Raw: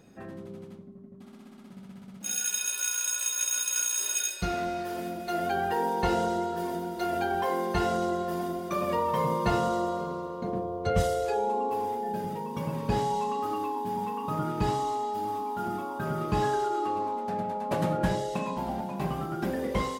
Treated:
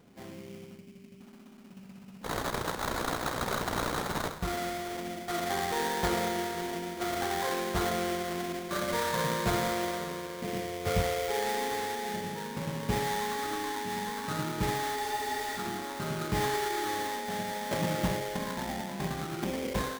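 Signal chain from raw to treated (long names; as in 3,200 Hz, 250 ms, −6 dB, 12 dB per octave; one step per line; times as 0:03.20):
sample-rate reduction 2,700 Hz, jitter 20%
frozen spectrum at 0:14.97, 0.61 s
level −3 dB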